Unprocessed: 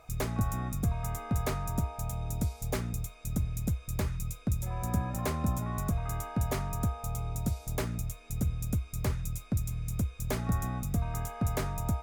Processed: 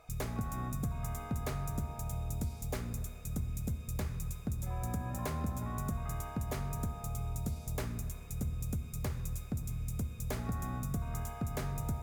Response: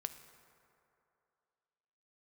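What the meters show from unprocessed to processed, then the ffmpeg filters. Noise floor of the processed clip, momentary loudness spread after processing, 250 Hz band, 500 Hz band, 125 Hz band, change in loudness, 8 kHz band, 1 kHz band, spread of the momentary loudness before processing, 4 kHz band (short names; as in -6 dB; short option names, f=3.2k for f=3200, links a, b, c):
-46 dBFS, 2 LU, -5.0 dB, -5.5 dB, -5.0 dB, -5.0 dB, -4.5 dB, -5.0 dB, 4 LU, -5.5 dB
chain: -filter_complex "[0:a]acompressor=threshold=-29dB:ratio=6[a];[1:a]atrim=start_sample=2205[b];[a][b]afir=irnorm=-1:irlink=0,volume=-1dB"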